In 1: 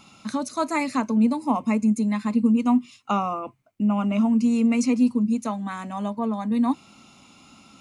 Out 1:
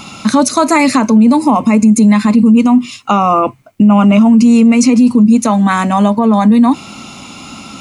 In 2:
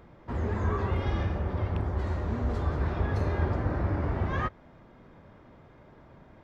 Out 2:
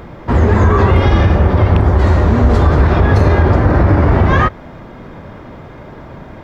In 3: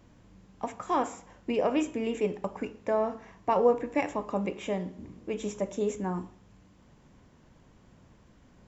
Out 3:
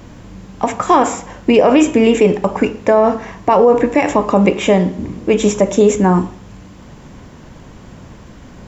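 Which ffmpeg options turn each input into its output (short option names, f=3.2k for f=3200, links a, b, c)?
-af "alimiter=level_in=21.5dB:limit=-1dB:release=50:level=0:latency=1,volume=-1dB"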